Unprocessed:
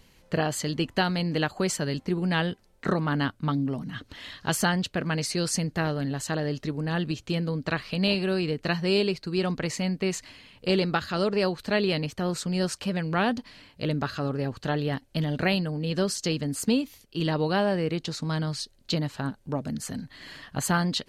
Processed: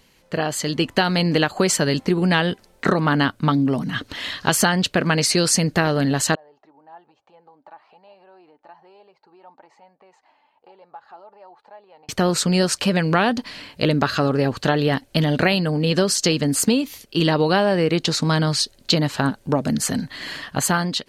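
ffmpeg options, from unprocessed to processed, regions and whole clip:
-filter_complex "[0:a]asettb=1/sr,asplit=3[a][b][c];[a]atrim=end=6.354[d];[b]atrim=start=6.35:end=12.09,asetpts=PTS-STARTPTS,afade=t=in:d=0.004:c=qsin,afade=t=out:st=5.736:d=0.004:c=qsin,acompressor=threshold=-33dB:ratio=6:attack=3.2:release=140:knee=1:detection=peak,bandpass=f=830:t=q:w=9.6,flanger=delay=1.7:depth=1.7:regen=47:speed=1.1:shape=sinusoidal[e];[c]atrim=start=12.086[f];[d][e]acrossfade=d=0.004:c1=hsin:c2=qsin[g];[g][f]acrossfade=d=0.004:c1=qsin:c2=hsin,dynaudnorm=f=180:g=9:m=11.5dB,lowshelf=f=140:g=-9,acompressor=threshold=-17dB:ratio=6,volume=3dB"

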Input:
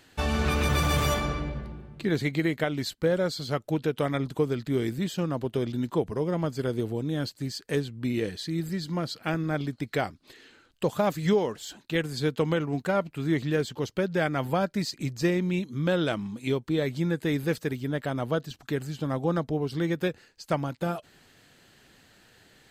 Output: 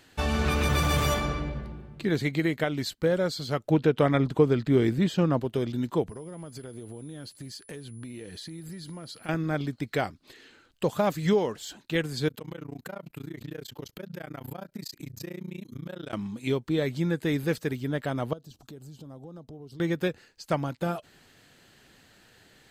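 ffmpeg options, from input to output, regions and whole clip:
-filter_complex "[0:a]asettb=1/sr,asplit=3[a][b][c];[a]atrim=end=3.684[d];[b]atrim=start=3.68:end=5.4,asetpts=PTS-STARTPTS,afade=t=in:d=0.004:c=qsin,afade=t=out:st=1.716:d=0.004:c=qsin,lowpass=f=2.9k:p=1,acontrast=30[e];[c]atrim=start=5.396[f];[d][e]acrossfade=d=0.004:c1=hsin:c2=qsin[g];[g][f]acrossfade=d=0.004:c1=qsin:c2=hsin,asettb=1/sr,asplit=3[h][i][j];[h]atrim=end=6.094[k];[i]atrim=start=6.09:end=9.29,asetpts=PTS-STARTPTS,afade=t=in:d=0.004:c=qsin,afade=t=out:st=3.196:d=0.004:c=qsin,acompressor=threshold=-37dB:ratio=10:attack=3.2:release=140:knee=1:detection=peak,aeval=exprs='val(0)+0.00178*sin(2*PI*10000*n/s)':c=same[l];[j]atrim=start=9.286[m];[k][l]acrossfade=d=0.004:c1=hsin:c2=qsin[n];[n][m]acrossfade=d=0.004:c1=qsin:c2=hsin,asettb=1/sr,asplit=3[o][p][q];[o]atrim=end=12.284[r];[p]atrim=start=12.28:end=16.13,asetpts=PTS-STARTPTS,afade=t=in:d=0.004:c=qsin,afade=t=out:st=3.846:d=0.004:c=qsin,equalizer=f=13k:t=o:w=0.38:g=13.5,acompressor=threshold=-31dB:ratio=12:attack=3.2:release=140:knee=1:detection=peak,tremolo=f=29:d=1[s];[q]atrim=start=16.126[t];[r][s]acrossfade=d=0.004:c1=hsin:c2=qsin[u];[u][t]acrossfade=d=0.004:c1=qsin:c2=hsin,asettb=1/sr,asplit=3[v][w][x];[v]atrim=end=18.334[y];[w]atrim=start=18.33:end=19.8,asetpts=PTS-STARTPTS,afade=t=in:d=0.004:c=qsin,afade=t=out:st=1.466:d=0.004:c=qsin,equalizer=f=1.9k:t=o:w=1.2:g=-15,acompressor=threshold=-44dB:ratio=4:attack=3.2:release=140:knee=1:detection=peak[z];[x]atrim=start=19.796[aa];[y][z]acrossfade=d=0.004:c1=hsin:c2=qsin[ab];[ab][aa]acrossfade=d=0.004:c1=qsin:c2=hsin"

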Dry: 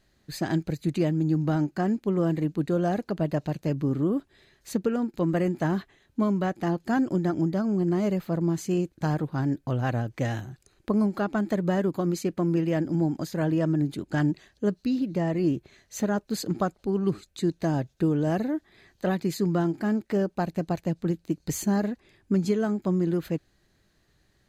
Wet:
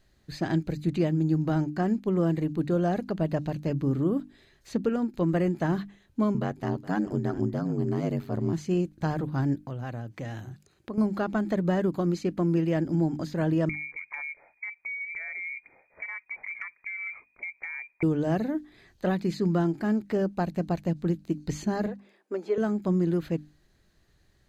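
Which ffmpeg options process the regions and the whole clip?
-filter_complex "[0:a]asettb=1/sr,asplit=3[a][b][c];[a]atrim=end=6.344[d];[b]atrim=start=6.34:end=8.53,asetpts=PTS-STARTPTS,afade=t=in:d=0.004:c=qsin,afade=t=out:st=2.186:d=0.004:c=qsin,aecho=1:1:417:0.112,atrim=end_sample=96579,acompressor=mode=upward:threshold=-38dB:ratio=2.5:attack=3.2:release=140:knee=2.83:detection=peak,aeval=exprs='val(0)*sin(2*PI*49*n/s)':c=same[e];[c]atrim=start=8.526[f];[d][e]acrossfade=d=0.004:c1=hsin:c2=qsin[g];[g][f]acrossfade=d=0.004:c1=qsin:c2=hsin,asettb=1/sr,asplit=3[h][i][j];[h]atrim=end=9.634[k];[i]atrim=start=9.63:end=10.98,asetpts=PTS-STARTPTS,afade=t=in:d=0.004:c=qsin,afade=t=out:st=1.346:d=0.004:c=qsin,highpass=97,acompressor=threshold=-37dB:ratio=2:attack=3.2:release=140:knee=1:detection=peak[l];[j]atrim=start=10.976[m];[k][l]acrossfade=d=0.004:c1=hsin:c2=qsin[n];[n][m]acrossfade=d=0.004:c1=qsin:c2=hsin,asettb=1/sr,asplit=3[o][p][q];[o]atrim=end=13.694[r];[p]atrim=start=13.69:end=18.03,asetpts=PTS-STARTPTS,afade=t=in:d=0.004:c=qsin,afade=t=out:st=4.336:d=0.004:c=qsin,lowpass=f=2.1k:t=q:w=0.5098,lowpass=f=2.1k:t=q:w=0.6013,lowpass=f=2.1k:t=q:w=0.9,lowpass=f=2.1k:t=q:w=2.563,afreqshift=-2500,acompressor=threshold=-31dB:ratio=12:attack=3.2:release=140:knee=1:detection=peak[s];[q]atrim=start=18.026[t];[r][s]acrossfade=d=0.004:c1=hsin:c2=qsin[u];[u][t]acrossfade=d=0.004:c1=qsin:c2=hsin,asettb=1/sr,asplit=3[v][w][x];[v]atrim=end=21.864[y];[w]atrim=start=21.86:end=22.58,asetpts=PTS-STARTPTS,afade=t=in:d=0.004:c=qsin,afade=t=out:st=0.716:d=0.004:c=qsin,acrossover=split=3600[z][aa];[aa]acompressor=threshold=-58dB:ratio=4:attack=1:release=60[ab];[z][ab]amix=inputs=2:normalize=0,highpass=f=430:w=0.5412,highpass=f=430:w=1.3066,tiltshelf=f=1.4k:g=6[ac];[x]atrim=start=22.576[ad];[y][ac]acrossfade=d=0.004:c1=hsin:c2=qsin[ae];[ae][ad]acrossfade=d=0.004:c1=qsin:c2=hsin,bandreject=f=50:t=h:w=6,bandreject=f=100:t=h:w=6,bandreject=f=150:t=h:w=6,bandreject=f=200:t=h:w=6,bandreject=f=250:t=h:w=6,bandreject=f=300:t=h:w=6,acrossover=split=5600[af][ag];[ag]acompressor=threshold=-58dB:ratio=4:attack=1:release=60[ah];[af][ah]amix=inputs=2:normalize=0,lowshelf=f=96:g=7,volume=-1dB"

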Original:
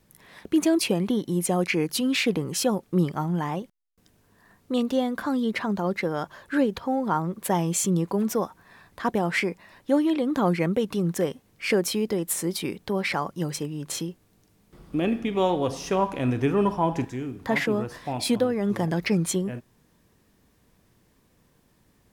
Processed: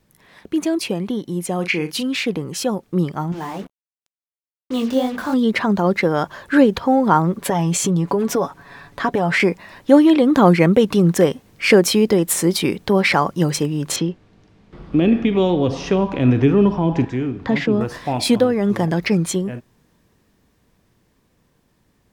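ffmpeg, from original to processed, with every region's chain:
-filter_complex "[0:a]asettb=1/sr,asplit=3[a][b][c];[a]atrim=end=1.554[d];[b]atrim=start=1.55:end=2.03,asetpts=PTS-STARTPTS,afade=t=in:d=0.004:c=qsin,afade=t=out:st=0.476:d=0.004:c=qsin,equalizer=f=2.7k:w=1.2:g=6,asplit=2[e][f];[f]adelay=40,volume=-11dB[g];[e][g]amix=inputs=2:normalize=0,atrim=end_sample=21168[h];[c]atrim=start=2.026[i];[d][h]acrossfade=d=0.004:c1=hsin:c2=qsin[j];[j][i]acrossfade=d=0.004:c1=qsin:c2=hsin,asettb=1/sr,asplit=3[k][l][m];[k]atrim=end=3.324[n];[l]atrim=start=3.32:end=5.34,asetpts=PTS-STARTPTS,afade=t=in:d=0.004:c=qsin,afade=t=out:st=2.016:d=0.004:c=qsin,flanger=delay=19:depth=4.6:speed=2.8,bandreject=f=60:t=h:w=6,bandreject=f=120:t=h:w=6,bandreject=f=180:t=h:w=6,bandreject=f=240:t=h:w=6,bandreject=f=300:t=h:w=6,bandreject=f=360:t=h:w=6,acrusher=bits=6:mix=0:aa=0.5[o];[m]atrim=start=5.336[p];[n][o]acrossfade=d=0.004:c1=hsin:c2=qsin[q];[q][p]acrossfade=d=0.004:c1=qsin:c2=hsin,asettb=1/sr,asplit=3[r][s][t];[r]atrim=end=7.384[u];[s]atrim=start=7.38:end=9.4,asetpts=PTS-STARTPTS,afade=t=in:d=0.004:c=qsin,afade=t=out:st=2.016:d=0.004:c=qsin,highshelf=f=8.1k:g=-6,aecho=1:1:7.1:0.51,atrim=end_sample=89082,acompressor=threshold=-25dB:ratio=5:attack=3.2:release=140:knee=1:detection=peak[v];[t]atrim=start=9.396[w];[u][v]acrossfade=d=0.004:c1=hsin:c2=qsin[x];[x][w]acrossfade=d=0.004:c1=qsin:c2=hsin,asettb=1/sr,asplit=3[y][z][aa];[y]atrim=end=13.964[ab];[z]atrim=start=13.96:end=17.81,asetpts=PTS-STARTPTS,afade=t=in:d=0.004:c=qsin,afade=t=out:st=3.846:d=0.004:c=qsin,lowpass=3.8k,acrossover=split=430|3000[ac][ad][ae];[ad]acompressor=threshold=-38dB:ratio=4:attack=3.2:release=140:knee=2.83:detection=peak[af];[ac][af][ae]amix=inputs=3:normalize=0[ag];[aa]atrim=start=17.806[ah];[ab][ag]acrossfade=d=0.004:c1=hsin:c2=qsin[ai];[ai][ah]acrossfade=d=0.004:c1=qsin:c2=hsin,equalizer=f=12k:w=0.72:g=-4.5,dynaudnorm=f=260:g=31:m=12.5dB,volume=1dB"

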